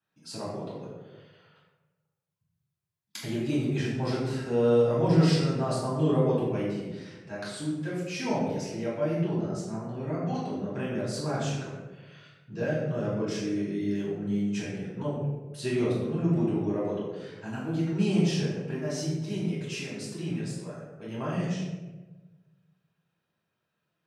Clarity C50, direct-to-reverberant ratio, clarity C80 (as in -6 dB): 1.0 dB, -8.0 dB, 3.5 dB